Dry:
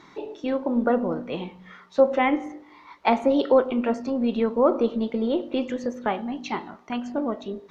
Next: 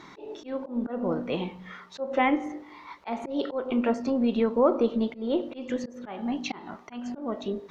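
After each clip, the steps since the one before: in parallel at +1.5 dB: compressor, threshold -29 dBFS, peak gain reduction 16 dB; on the sum: auto swell 0.216 s; gain -4 dB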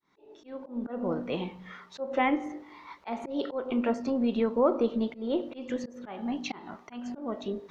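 opening faded in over 1.03 s; gain -2.5 dB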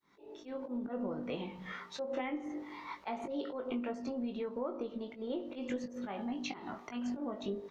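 compressor 5:1, threshold -38 dBFS, peak gain reduction 17.5 dB; doubler 20 ms -6 dB; gain +1 dB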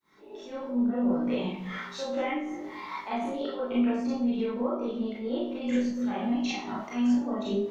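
Schroeder reverb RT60 0.44 s, combs from 29 ms, DRR -7.5 dB

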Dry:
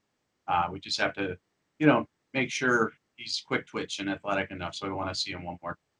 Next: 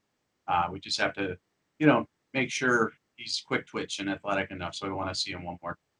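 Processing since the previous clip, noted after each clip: dynamic EQ 8600 Hz, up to +5 dB, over -56 dBFS, Q 2.6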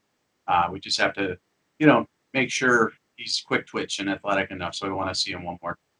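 low shelf 140 Hz -5 dB; gain +5.5 dB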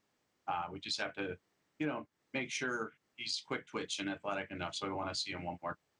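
compressor 6:1, threshold -28 dBFS, peak gain reduction 17 dB; gain -6.5 dB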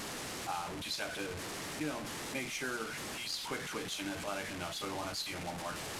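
delta modulation 64 kbps, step -34 dBFS; gain -1.5 dB

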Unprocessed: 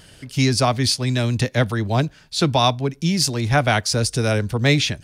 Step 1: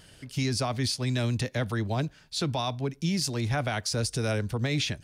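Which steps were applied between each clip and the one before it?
limiter -12.5 dBFS, peak gain reduction 9 dB; gain -6.5 dB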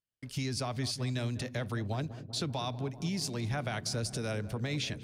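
gate -46 dBFS, range -44 dB; compressor 2:1, threshold -34 dBFS, peak gain reduction 6 dB; darkening echo 0.194 s, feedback 84%, low-pass 1200 Hz, level -14 dB; gain -1 dB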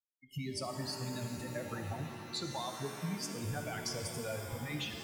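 per-bin expansion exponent 3; compressor, threshold -40 dBFS, peak gain reduction 7.5 dB; shimmer reverb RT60 2.4 s, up +7 st, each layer -2 dB, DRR 4.5 dB; gain +4 dB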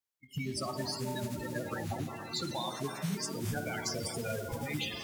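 bin magnitudes rounded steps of 30 dB; in parallel at -5 dB: short-mantissa float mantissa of 2-bit

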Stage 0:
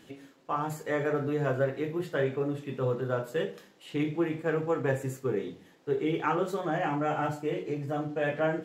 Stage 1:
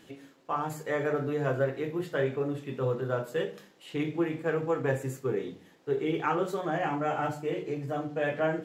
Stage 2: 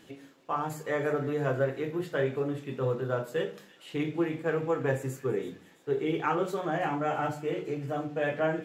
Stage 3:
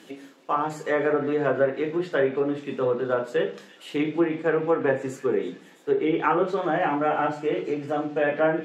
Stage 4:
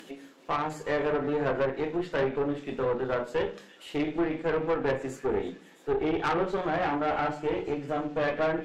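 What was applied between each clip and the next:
notches 50/100/150/200/250/300 Hz
thin delay 0.331 s, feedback 49%, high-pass 2200 Hz, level -15.5 dB
HPF 180 Hz 24 dB/oct; treble ducked by the level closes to 2500 Hz, closed at -24.5 dBFS; gain +6.5 dB
tube stage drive 21 dB, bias 0.65; upward compressor, threshold -45 dBFS

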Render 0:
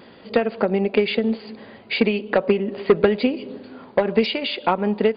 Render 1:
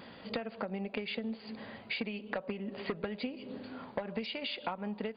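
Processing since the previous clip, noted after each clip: bell 380 Hz -7.5 dB 0.65 oct; compressor 4:1, threshold -33 dBFS, peak gain reduction 15.5 dB; gain -3 dB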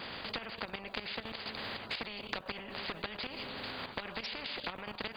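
level quantiser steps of 12 dB; spectral compressor 4:1; gain +5.5 dB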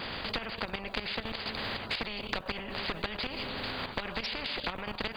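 low shelf 67 Hz +11 dB; in parallel at -7.5 dB: soft clip -30.5 dBFS, distortion -15 dB; on the sum: gain +2 dB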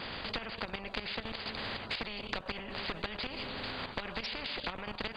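polynomial smoothing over 9 samples; gain -3 dB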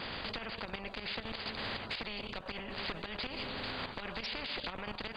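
limiter -28 dBFS, peak gain reduction 10.5 dB

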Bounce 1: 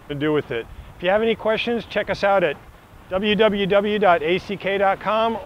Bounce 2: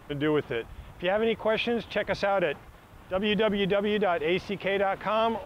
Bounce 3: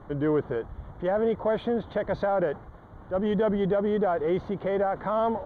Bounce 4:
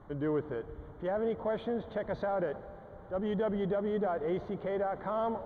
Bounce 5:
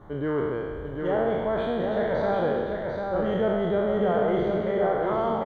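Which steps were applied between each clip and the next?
limiter -11 dBFS, peak gain reduction 7 dB; gain -5 dB
in parallel at -4 dB: soft clip -32.5 dBFS, distortion -6 dB; on the sum: running mean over 17 samples
reverb RT60 4.4 s, pre-delay 78 ms, DRR 15 dB; gain -7 dB
spectral trails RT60 1.80 s; echo 0.745 s -4.5 dB; gain +3.5 dB

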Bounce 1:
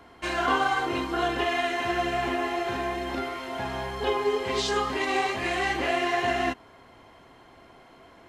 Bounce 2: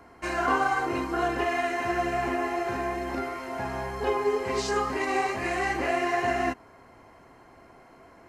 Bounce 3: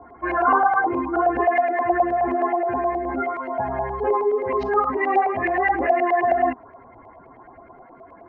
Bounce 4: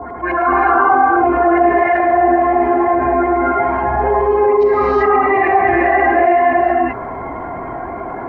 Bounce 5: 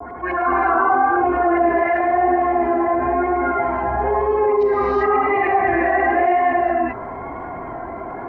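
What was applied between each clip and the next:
bell 3400 Hz -14 dB 0.46 oct
spectral contrast raised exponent 1.8; LFO low-pass saw up 9.5 Hz 680–2700 Hz; gain +4 dB
non-linear reverb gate 0.41 s rising, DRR -7 dB; fast leveller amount 50%; gain -3 dB
vibrato 0.98 Hz 35 cents; gain -4.5 dB

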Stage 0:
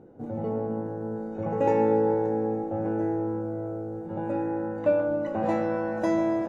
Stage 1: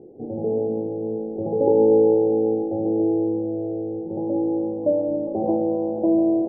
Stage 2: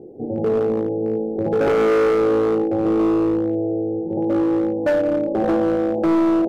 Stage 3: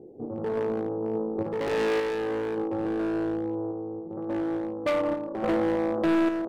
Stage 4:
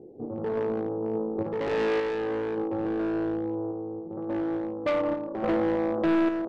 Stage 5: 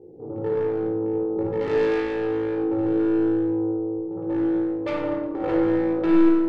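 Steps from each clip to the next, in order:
elliptic low-pass 780 Hz, stop band 60 dB; bell 390 Hz +12.5 dB 0.61 oct
overloaded stage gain 19.5 dB; gain +5 dB
self-modulated delay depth 0.16 ms; random-step tremolo; gain -5.5 dB
air absorption 99 m
shoebox room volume 3000 m³, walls furnished, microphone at 4.3 m; gain -3 dB

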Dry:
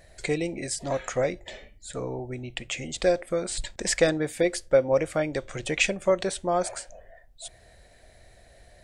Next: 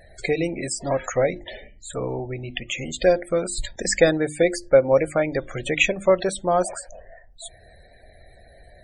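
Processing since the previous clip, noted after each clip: loudest bins only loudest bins 64; notches 50/100/150/200/250/300/350 Hz; gain +5 dB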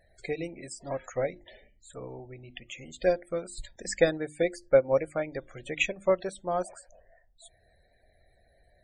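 upward expander 1.5:1, over -29 dBFS; gain -5 dB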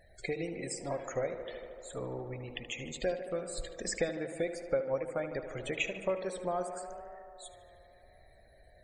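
compressor 2.5:1, threshold -38 dBFS, peak gain reduction 15.5 dB; on a send: tape echo 75 ms, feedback 90%, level -10 dB, low-pass 3300 Hz; on the sum: gain +3 dB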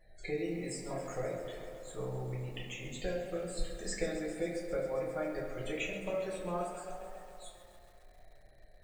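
shoebox room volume 47 m³, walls mixed, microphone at 0.95 m; lo-fi delay 0.134 s, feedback 80%, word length 8-bit, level -12.5 dB; gain -8 dB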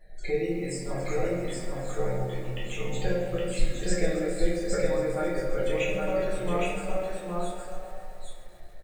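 echo 0.814 s -3 dB; shoebox room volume 30 m³, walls mixed, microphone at 0.43 m; gain +3.5 dB

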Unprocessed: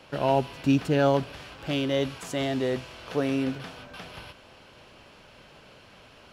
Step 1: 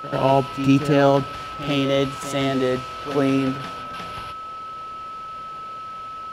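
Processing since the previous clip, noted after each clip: whine 1300 Hz -36 dBFS; reverse echo 89 ms -10.5 dB; gain +5.5 dB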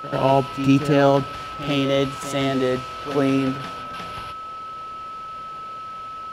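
nothing audible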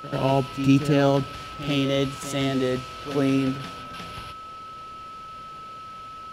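bell 930 Hz -6.5 dB 2.4 oct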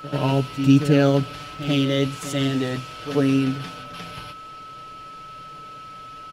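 comb 6.7 ms

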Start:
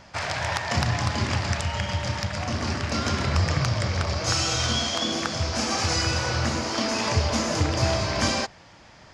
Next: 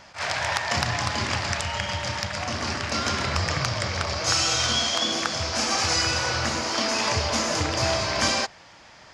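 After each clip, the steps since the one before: low shelf 400 Hz -9 dB; attack slew limiter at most 240 dB/s; gain +3 dB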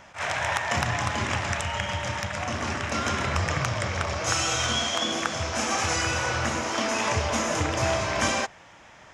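bell 4600 Hz -13.5 dB 0.41 oct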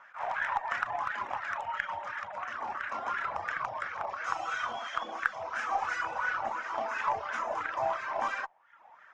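reverb removal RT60 0.69 s; wah 2.9 Hz 780–1600 Hz, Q 4.8; added harmonics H 8 -36 dB, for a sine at -15 dBFS; gain +4.5 dB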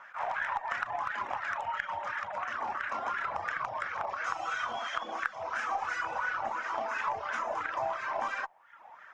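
compressor 2.5:1, threshold -36 dBFS, peak gain reduction 10 dB; gain +4 dB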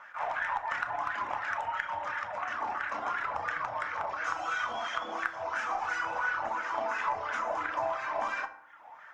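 FDN reverb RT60 0.71 s, low-frequency decay 1.1×, high-frequency decay 0.55×, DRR 7 dB

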